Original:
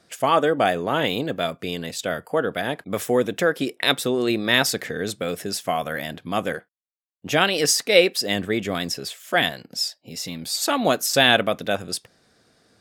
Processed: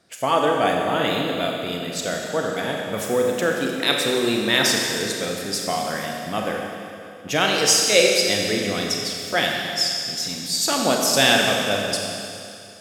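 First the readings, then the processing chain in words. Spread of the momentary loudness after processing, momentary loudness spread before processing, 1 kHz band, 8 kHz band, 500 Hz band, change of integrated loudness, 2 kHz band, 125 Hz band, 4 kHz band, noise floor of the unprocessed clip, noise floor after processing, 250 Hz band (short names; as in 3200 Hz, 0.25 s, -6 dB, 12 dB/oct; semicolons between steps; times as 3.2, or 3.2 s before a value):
12 LU, 12 LU, +0.5 dB, +5.0 dB, +0.5 dB, +1.5 dB, +1.0 dB, 0.0 dB, +3.0 dB, -68 dBFS, -39 dBFS, +0.5 dB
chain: dynamic EQ 6100 Hz, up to +6 dB, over -38 dBFS, Q 1.1; Schroeder reverb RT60 2.6 s, combs from 30 ms, DRR 0 dB; gain -2.5 dB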